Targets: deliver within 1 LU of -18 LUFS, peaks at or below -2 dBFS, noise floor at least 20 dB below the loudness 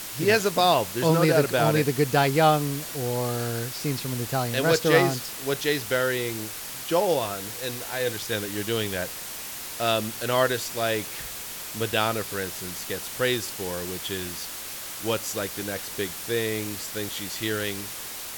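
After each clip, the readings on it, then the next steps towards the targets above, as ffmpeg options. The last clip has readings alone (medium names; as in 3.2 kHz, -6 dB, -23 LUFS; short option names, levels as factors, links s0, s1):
noise floor -37 dBFS; noise floor target -46 dBFS; loudness -26.0 LUFS; peak level -6.0 dBFS; loudness target -18.0 LUFS
-> -af "afftdn=nr=9:nf=-37"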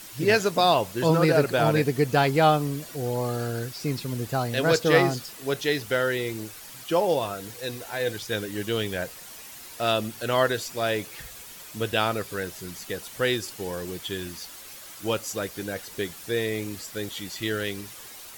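noise floor -44 dBFS; noise floor target -46 dBFS
-> -af "afftdn=nr=6:nf=-44"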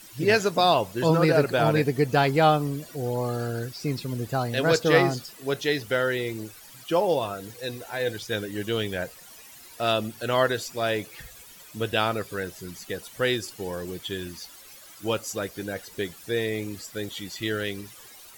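noise floor -48 dBFS; loudness -26.0 LUFS; peak level -6.0 dBFS; loudness target -18.0 LUFS
-> -af "volume=2.51,alimiter=limit=0.794:level=0:latency=1"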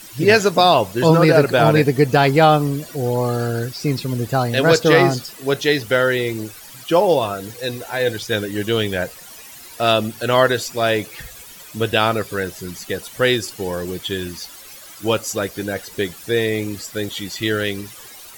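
loudness -18.5 LUFS; peak level -2.0 dBFS; noise floor -40 dBFS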